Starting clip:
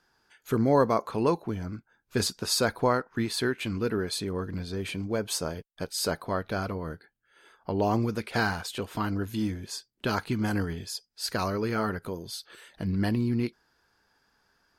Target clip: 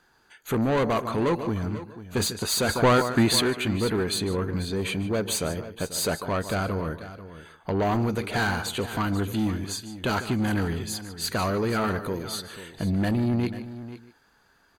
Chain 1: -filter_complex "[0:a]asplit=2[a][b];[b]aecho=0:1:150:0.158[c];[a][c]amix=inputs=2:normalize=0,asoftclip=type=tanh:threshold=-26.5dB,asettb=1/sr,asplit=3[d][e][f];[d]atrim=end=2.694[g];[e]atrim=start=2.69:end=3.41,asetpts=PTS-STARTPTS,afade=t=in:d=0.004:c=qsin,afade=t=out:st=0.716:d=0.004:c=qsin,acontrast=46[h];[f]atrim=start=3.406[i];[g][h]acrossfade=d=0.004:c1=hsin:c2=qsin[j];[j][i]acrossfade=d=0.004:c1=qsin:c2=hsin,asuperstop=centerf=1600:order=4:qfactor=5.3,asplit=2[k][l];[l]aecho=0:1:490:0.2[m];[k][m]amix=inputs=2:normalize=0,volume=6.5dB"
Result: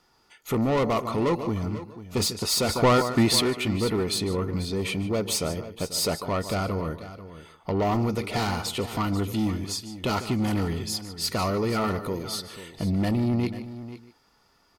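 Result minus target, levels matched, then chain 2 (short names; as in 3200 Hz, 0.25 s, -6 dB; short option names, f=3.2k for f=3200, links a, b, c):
2000 Hz band -4.0 dB
-filter_complex "[0:a]asplit=2[a][b];[b]aecho=0:1:150:0.158[c];[a][c]amix=inputs=2:normalize=0,asoftclip=type=tanh:threshold=-26.5dB,asettb=1/sr,asplit=3[d][e][f];[d]atrim=end=2.694[g];[e]atrim=start=2.69:end=3.41,asetpts=PTS-STARTPTS,afade=t=in:d=0.004:c=qsin,afade=t=out:st=0.716:d=0.004:c=qsin,acontrast=46[h];[f]atrim=start=3.406[i];[g][h]acrossfade=d=0.004:c1=hsin:c2=qsin[j];[j][i]acrossfade=d=0.004:c1=qsin:c2=hsin,asuperstop=centerf=5300:order=4:qfactor=5.3,asplit=2[k][l];[l]aecho=0:1:490:0.2[m];[k][m]amix=inputs=2:normalize=0,volume=6.5dB"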